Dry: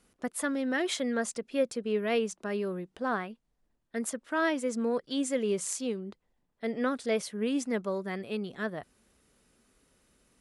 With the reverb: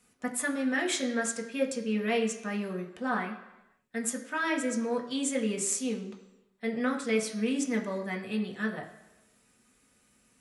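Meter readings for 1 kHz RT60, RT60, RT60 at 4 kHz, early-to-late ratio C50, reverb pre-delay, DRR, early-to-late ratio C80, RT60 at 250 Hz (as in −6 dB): 1.0 s, 1.0 s, 0.95 s, 9.5 dB, 3 ms, 0.5 dB, 11.5 dB, 0.90 s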